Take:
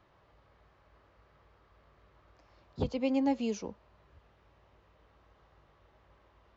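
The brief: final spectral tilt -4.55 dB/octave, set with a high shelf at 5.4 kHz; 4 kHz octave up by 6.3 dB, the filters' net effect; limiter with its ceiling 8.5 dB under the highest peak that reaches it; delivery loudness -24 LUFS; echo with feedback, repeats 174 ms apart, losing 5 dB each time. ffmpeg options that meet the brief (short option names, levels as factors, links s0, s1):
-af "equalizer=f=4000:t=o:g=5,highshelf=f=5400:g=9,alimiter=level_in=1.5:limit=0.0631:level=0:latency=1,volume=0.668,aecho=1:1:174|348|522|696|870|1044|1218:0.562|0.315|0.176|0.0988|0.0553|0.031|0.0173,volume=4.22"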